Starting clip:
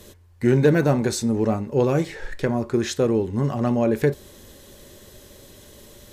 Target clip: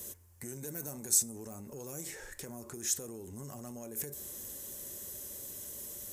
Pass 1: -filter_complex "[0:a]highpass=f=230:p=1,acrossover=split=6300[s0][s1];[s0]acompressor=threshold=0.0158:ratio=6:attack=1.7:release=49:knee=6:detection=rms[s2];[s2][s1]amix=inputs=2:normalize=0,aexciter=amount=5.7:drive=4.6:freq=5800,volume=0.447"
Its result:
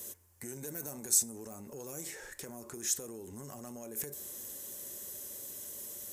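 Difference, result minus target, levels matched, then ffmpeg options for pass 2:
125 Hz band -3.5 dB
-filter_complex "[0:a]highpass=f=64:p=1,acrossover=split=6300[s0][s1];[s0]acompressor=threshold=0.0158:ratio=6:attack=1.7:release=49:knee=6:detection=rms[s2];[s2][s1]amix=inputs=2:normalize=0,aexciter=amount=5.7:drive=4.6:freq=5800,volume=0.447"

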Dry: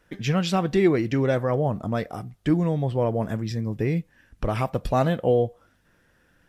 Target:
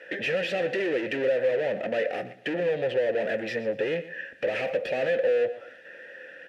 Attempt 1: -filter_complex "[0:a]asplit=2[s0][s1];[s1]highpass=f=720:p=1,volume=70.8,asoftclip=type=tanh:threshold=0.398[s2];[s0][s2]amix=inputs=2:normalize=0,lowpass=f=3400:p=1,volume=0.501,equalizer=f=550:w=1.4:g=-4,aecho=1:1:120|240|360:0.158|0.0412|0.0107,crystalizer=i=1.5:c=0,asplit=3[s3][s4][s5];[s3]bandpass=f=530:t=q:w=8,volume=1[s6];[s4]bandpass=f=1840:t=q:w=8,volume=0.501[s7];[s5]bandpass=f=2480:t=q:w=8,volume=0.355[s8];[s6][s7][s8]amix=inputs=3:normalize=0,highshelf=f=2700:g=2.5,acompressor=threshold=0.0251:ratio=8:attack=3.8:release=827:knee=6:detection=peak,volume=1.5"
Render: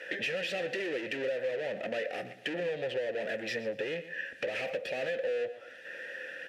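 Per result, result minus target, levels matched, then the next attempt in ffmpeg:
compression: peak gain reduction +9.5 dB; 4 kHz band +5.5 dB
-filter_complex "[0:a]asplit=2[s0][s1];[s1]highpass=f=720:p=1,volume=70.8,asoftclip=type=tanh:threshold=0.398[s2];[s0][s2]amix=inputs=2:normalize=0,lowpass=f=3400:p=1,volume=0.501,equalizer=f=550:w=1.4:g=-4,aecho=1:1:120|240|360:0.158|0.0412|0.0107,crystalizer=i=1.5:c=0,asplit=3[s3][s4][s5];[s3]bandpass=f=530:t=q:w=8,volume=1[s6];[s4]bandpass=f=1840:t=q:w=8,volume=0.501[s7];[s5]bandpass=f=2480:t=q:w=8,volume=0.355[s8];[s6][s7][s8]amix=inputs=3:normalize=0,highshelf=f=2700:g=2.5,acompressor=threshold=0.0841:ratio=8:attack=3.8:release=827:knee=6:detection=peak,volume=1.5"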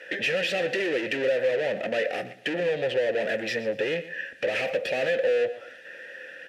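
4 kHz band +4.5 dB
-filter_complex "[0:a]asplit=2[s0][s1];[s1]highpass=f=720:p=1,volume=70.8,asoftclip=type=tanh:threshold=0.398[s2];[s0][s2]amix=inputs=2:normalize=0,lowpass=f=3400:p=1,volume=0.501,equalizer=f=550:w=1.4:g=-4,aecho=1:1:120|240|360:0.158|0.0412|0.0107,crystalizer=i=1.5:c=0,asplit=3[s3][s4][s5];[s3]bandpass=f=530:t=q:w=8,volume=1[s6];[s4]bandpass=f=1840:t=q:w=8,volume=0.501[s7];[s5]bandpass=f=2480:t=q:w=8,volume=0.355[s8];[s6][s7][s8]amix=inputs=3:normalize=0,highshelf=f=2700:g=-7.5,acompressor=threshold=0.0841:ratio=8:attack=3.8:release=827:knee=6:detection=peak,volume=1.5"

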